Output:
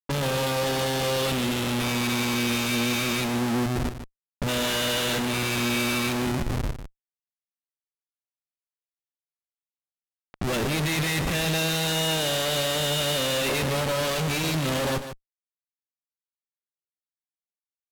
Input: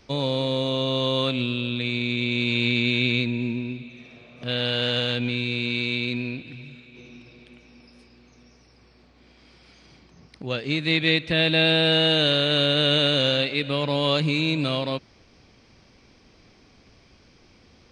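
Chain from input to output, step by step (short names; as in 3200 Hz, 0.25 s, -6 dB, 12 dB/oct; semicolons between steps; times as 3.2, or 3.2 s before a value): median filter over 3 samples; notches 50/100 Hz; comb 5.2 ms, depth 34%; Schmitt trigger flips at -35 dBFS; low-pass opened by the level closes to 1700 Hz; on a send: echo 0.15 s -10.5 dB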